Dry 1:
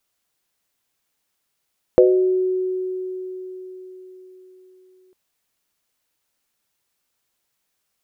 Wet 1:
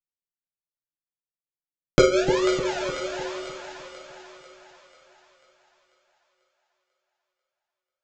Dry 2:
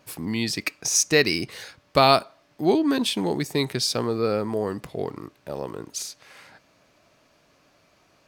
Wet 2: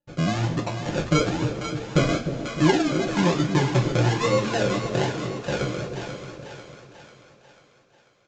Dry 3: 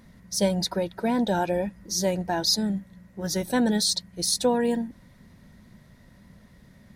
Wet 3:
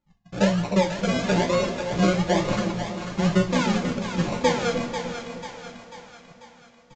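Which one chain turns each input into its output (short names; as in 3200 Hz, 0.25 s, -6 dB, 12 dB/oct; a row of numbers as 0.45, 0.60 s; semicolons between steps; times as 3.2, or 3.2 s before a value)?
reverb removal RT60 1.1 s; gate -48 dBFS, range -35 dB; tilt -3 dB/oct; compressor 2.5:1, threshold -24 dBFS; flange 0.46 Hz, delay 3.5 ms, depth 7.9 ms, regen -53%; decimation with a swept rate 38×, swing 60% 1.1 Hz; on a send: split-band echo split 630 Hz, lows 0.303 s, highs 0.492 s, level -7.5 dB; on the sum: two-slope reverb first 0.23 s, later 4.2 s, from -22 dB, DRR -0.5 dB; downsampling 16000 Hz; match loudness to -24 LUFS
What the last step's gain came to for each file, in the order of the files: +5.5, +4.5, +4.5 dB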